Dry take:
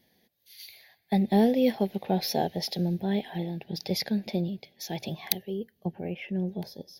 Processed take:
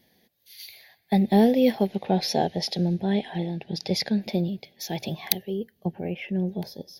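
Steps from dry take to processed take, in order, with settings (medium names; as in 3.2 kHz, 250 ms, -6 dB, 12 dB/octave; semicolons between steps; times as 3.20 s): 1.87–4.21 s: low-pass 10 kHz 24 dB/octave; trim +3.5 dB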